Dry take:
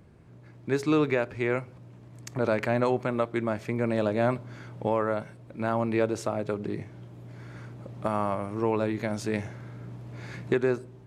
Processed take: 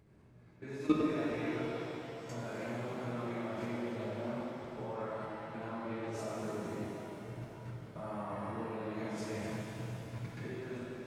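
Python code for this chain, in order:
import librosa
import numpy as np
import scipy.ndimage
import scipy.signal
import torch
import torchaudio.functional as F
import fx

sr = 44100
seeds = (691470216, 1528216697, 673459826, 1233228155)

y = fx.phase_scramble(x, sr, seeds[0], window_ms=200)
y = fx.level_steps(y, sr, step_db=20)
y = fx.rev_shimmer(y, sr, seeds[1], rt60_s=3.6, semitones=7, shimmer_db=-8, drr_db=-2.5)
y = F.gain(torch.from_numpy(y), -4.5).numpy()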